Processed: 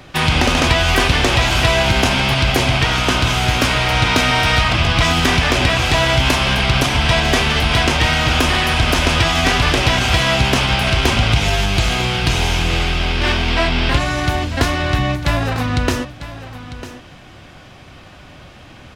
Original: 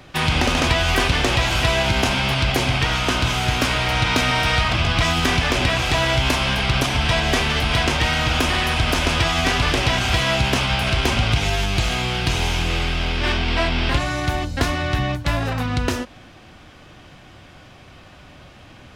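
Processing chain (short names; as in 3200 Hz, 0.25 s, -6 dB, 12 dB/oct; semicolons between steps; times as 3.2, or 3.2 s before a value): echo 0.949 s -14 dB; gain +4 dB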